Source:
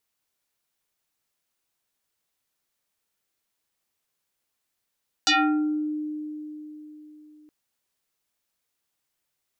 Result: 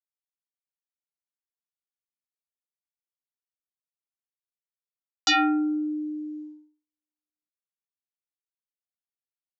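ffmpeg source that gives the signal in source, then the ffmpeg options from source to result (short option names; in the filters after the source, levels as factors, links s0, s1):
-f lavfi -i "aevalsrc='0.158*pow(10,-3*t/3.88)*sin(2*PI*303*t+5.7*pow(10,-3*t/0.62)*sin(2*PI*3.56*303*t))':d=2.22:s=44100"
-af "agate=range=0.00224:threshold=0.0126:ratio=16:detection=peak,aresample=16000,aresample=44100"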